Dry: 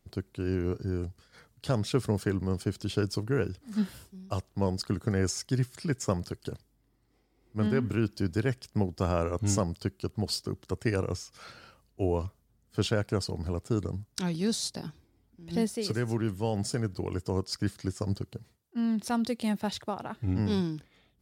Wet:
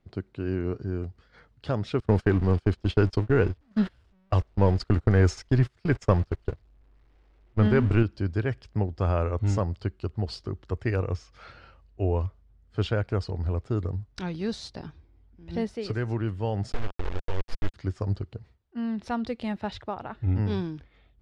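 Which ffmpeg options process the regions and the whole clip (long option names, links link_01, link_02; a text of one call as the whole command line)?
ffmpeg -i in.wav -filter_complex "[0:a]asettb=1/sr,asplit=3[link_01][link_02][link_03];[link_01]atrim=end=2.004[link_04];[link_02]atrim=start=2:end=8.03,asetpts=PTS-STARTPTS,afade=type=in:duration=0.004:curve=qsin,afade=type=out:start_time=6.026:duration=0.004:curve=qsin,aeval=exprs='val(0)+0.5*0.00944*sgn(val(0))':channel_layout=same,agate=range=-27dB:threshold=-34dB:ratio=16:release=100:detection=peak,acontrast=33[link_05];[link_03]atrim=start=8.026[link_06];[link_04][link_05]acrossfade=duration=0.004:curve1=hsin:curve2=qsin[link_07];[link_07][link_06]acrossfade=duration=0.004:curve1=qsin:curve2=hsin,asettb=1/sr,asplit=3[link_08][link_09][link_10];[link_08]atrim=end=16.724[link_11];[link_09]atrim=start=16.72:end=17.74,asetpts=PTS-STARTPTS,afade=type=in:duration=0.004:curve=qsin,afade=type=out:start_time=1.016:duration=0.004:curve=qsin,lowshelf=frequency=69:gain=-12,aeval=exprs='val(0)+0.00501*sin(2*PI*480*n/s)':channel_layout=same,acrusher=bits=3:dc=4:mix=0:aa=0.000001[link_12];[link_10]atrim=start=17.736[link_13];[link_11][link_12]acrossfade=duration=0.004:curve1=hsin:curve2=qsin[link_14];[link_14][link_13]acrossfade=duration=0.004:curve1=qsin:curve2=hsin,lowpass=3000,asubboost=boost=6.5:cutoff=63,volume=1.5dB" out.wav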